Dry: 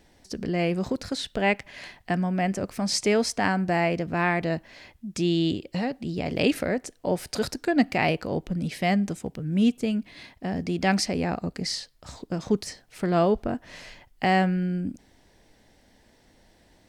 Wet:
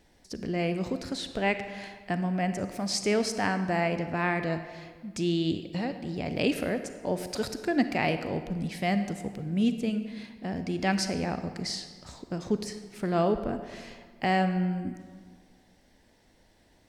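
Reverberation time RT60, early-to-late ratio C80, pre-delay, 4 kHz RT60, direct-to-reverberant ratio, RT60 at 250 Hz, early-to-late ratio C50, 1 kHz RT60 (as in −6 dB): 1.7 s, 10.5 dB, 36 ms, 1.1 s, 9.0 dB, 1.7 s, 9.5 dB, 1.7 s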